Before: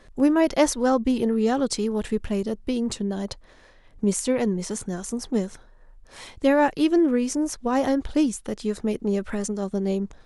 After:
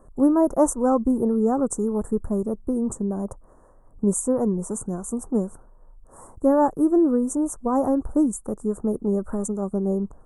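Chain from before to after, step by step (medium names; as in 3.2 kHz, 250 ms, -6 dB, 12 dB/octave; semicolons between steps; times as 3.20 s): elliptic band-stop 1.2–8.2 kHz, stop band 50 dB; dynamic bell 6.5 kHz, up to +7 dB, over -49 dBFS, Q 1.9; trim +1.5 dB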